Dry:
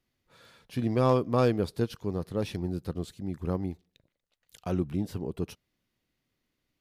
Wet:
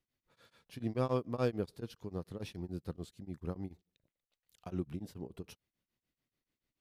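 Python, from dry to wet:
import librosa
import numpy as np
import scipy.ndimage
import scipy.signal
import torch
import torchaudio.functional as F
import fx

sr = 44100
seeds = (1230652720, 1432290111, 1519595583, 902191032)

y = x * np.abs(np.cos(np.pi * 6.9 * np.arange(len(x)) / sr))
y = F.gain(torch.from_numpy(y), -6.5).numpy()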